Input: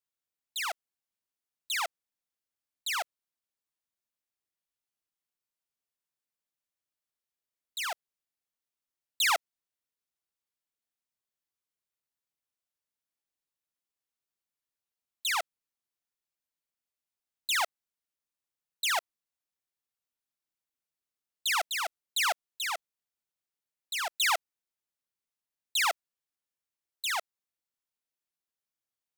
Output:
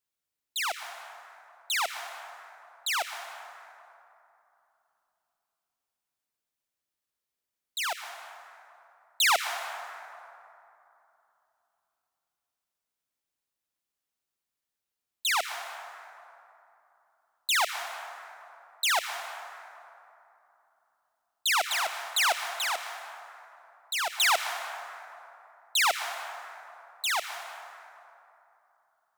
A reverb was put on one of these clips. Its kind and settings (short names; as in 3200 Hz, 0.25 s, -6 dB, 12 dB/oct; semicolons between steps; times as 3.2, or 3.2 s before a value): plate-style reverb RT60 3 s, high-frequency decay 0.45×, pre-delay 0.105 s, DRR 7.5 dB; gain +3 dB